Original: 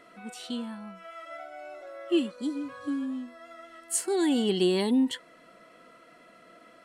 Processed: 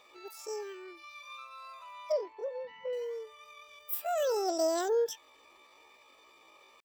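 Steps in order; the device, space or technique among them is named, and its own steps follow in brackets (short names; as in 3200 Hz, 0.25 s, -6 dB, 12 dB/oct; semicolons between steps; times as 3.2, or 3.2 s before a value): chipmunk voice (pitch shift +10 st); 2.12–2.93 air absorption 270 m; gain -5 dB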